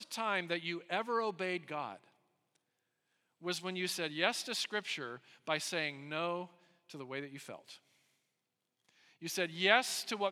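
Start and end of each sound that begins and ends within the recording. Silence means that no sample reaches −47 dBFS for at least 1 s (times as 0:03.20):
0:03.43–0:07.75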